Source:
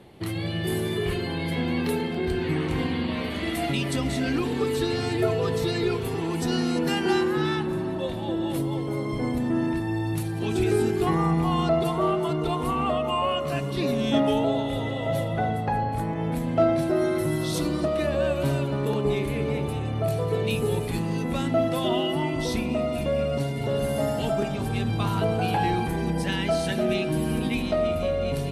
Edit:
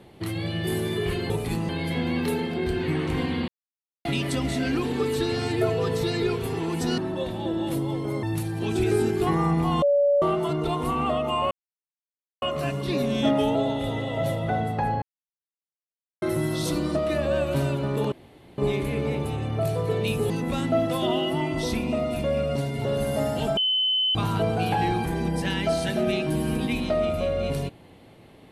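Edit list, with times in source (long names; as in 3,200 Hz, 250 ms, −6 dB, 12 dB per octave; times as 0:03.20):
0:03.09–0:03.66: silence
0:06.59–0:07.81: remove
0:09.06–0:10.03: remove
0:11.62–0:12.02: beep over 571 Hz −16.5 dBFS
0:13.31: splice in silence 0.91 s
0:15.91–0:17.11: silence
0:19.01: splice in room tone 0.46 s
0:20.73–0:21.12: move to 0:01.30
0:24.39–0:24.97: beep over 3,040 Hz −20 dBFS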